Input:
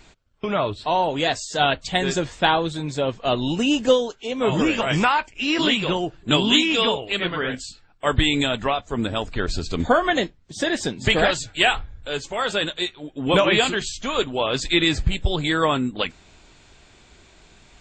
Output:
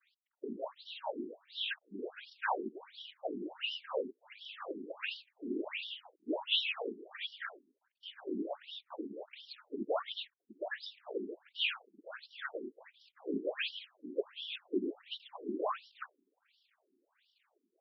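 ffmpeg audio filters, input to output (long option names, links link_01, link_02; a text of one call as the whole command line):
ffmpeg -i in.wav -af "acrusher=bits=7:dc=4:mix=0:aa=0.000001,afftfilt=real='hypot(re,im)*cos(2*PI*random(0))':imag='hypot(re,im)*sin(2*PI*random(1))':win_size=512:overlap=0.75,afftfilt=real='re*between(b*sr/1024,280*pow(4100/280,0.5+0.5*sin(2*PI*1.4*pts/sr))/1.41,280*pow(4100/280,0.5+0.5*sin(2*PI*1.4*pts/sr))*1.41)':imag='im*between(b*sr/1024,280*pow(4100/280,0.5+0.5*sin(2*PI*1.4*pts/sr))/1.41,280*pow(4100/280,0.5+0.5*sin(2*PI*1.4*pts/sr))*1.41)':win_size=1024:overlap=0.75,volume=-5.5dB" out.wav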